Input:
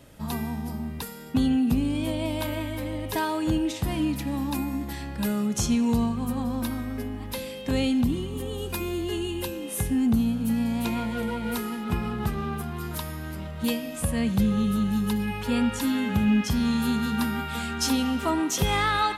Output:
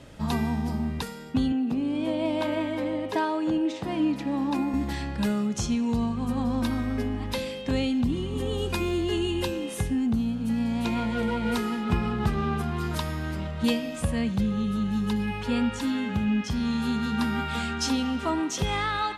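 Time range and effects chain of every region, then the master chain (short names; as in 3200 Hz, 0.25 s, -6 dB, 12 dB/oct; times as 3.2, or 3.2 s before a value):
1.52–4.74 HPF 330 Hz + tilt -2.5 dB/oct
whole clip: LPF 6900 Hz 12 dB/oct; vocal rider within 4 dB 0.5 s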